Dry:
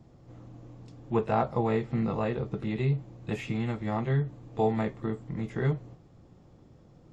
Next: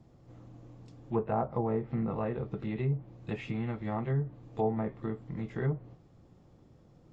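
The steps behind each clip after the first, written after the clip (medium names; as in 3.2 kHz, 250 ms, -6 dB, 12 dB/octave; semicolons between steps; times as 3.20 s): low-pass that closes with the level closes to 1.1 kHz, closed at -23 dBFS; trim -3.5 dB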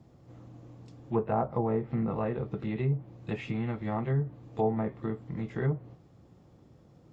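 high-pass 51 Hz; trim +2 dB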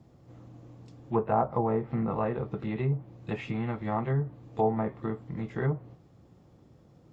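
dynamic bell 1 kHz, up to +5 dB, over -46 dBFS, Q 0.96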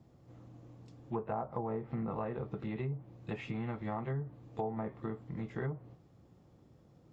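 compression 4:1, threshold -29 dBFS, peak gain reduction 8 dB; trim -4.5 dB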